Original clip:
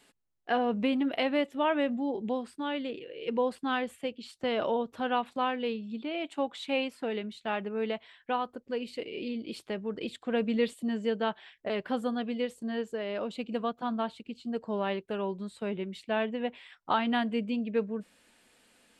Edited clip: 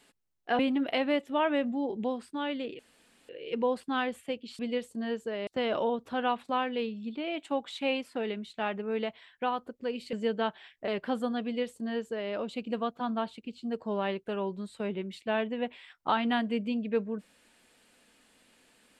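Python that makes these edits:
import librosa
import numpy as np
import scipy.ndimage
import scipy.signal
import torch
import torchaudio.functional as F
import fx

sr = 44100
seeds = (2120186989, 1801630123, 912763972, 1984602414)

y = fx.edit(x, sr, fx.cut(start_s=0.59, length_s=0.25),
    fx.insert_room_tone(at_s=3.04, length_s=0.5),
    fx.cut(start_s=9.0, length_s=1.95),
    fx.duplicate(start_s=12.26, length_s=0.88, to_s=4.34), tone=tone)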